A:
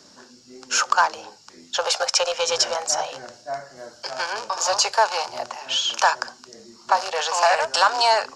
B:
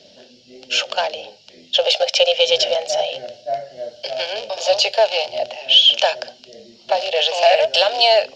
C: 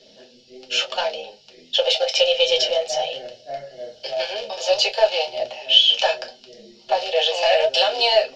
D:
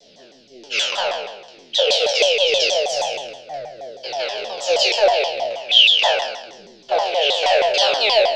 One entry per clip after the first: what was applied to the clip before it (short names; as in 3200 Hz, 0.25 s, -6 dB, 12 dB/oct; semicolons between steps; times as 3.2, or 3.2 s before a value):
EQ curve 210 Hz 0 dB, 310 Hz -5 dB, 620 Hz +10 dB, 1100 Hz -20 dB, 3100 Hz +12 dB, 8100 Hz -16 dB, 12000 Hz -12 dB; gain +2 dB
reverb, pre-delay 4 ms, DRR 1 dB; gain -5.5 dB
spectral trails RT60 0.96 s; shaped vibrato saw down 6.3 Hz, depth 250 cents; gain -1.5 dB